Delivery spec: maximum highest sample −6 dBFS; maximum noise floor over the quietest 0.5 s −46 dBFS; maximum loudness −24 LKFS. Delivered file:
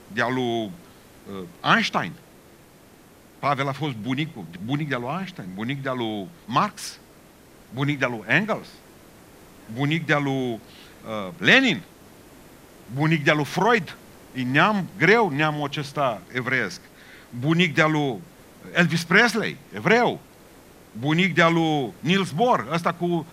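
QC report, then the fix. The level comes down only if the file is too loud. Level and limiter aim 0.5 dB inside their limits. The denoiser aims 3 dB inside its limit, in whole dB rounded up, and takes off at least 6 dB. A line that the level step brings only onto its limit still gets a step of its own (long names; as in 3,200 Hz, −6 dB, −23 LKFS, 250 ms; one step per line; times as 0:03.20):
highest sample −2.5 dBFS: out of spec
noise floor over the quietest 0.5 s −51 dBFS: in spec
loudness −22.5 LKFS: out of spec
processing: level −2 dB
brickwall limiter −6.5 dBFS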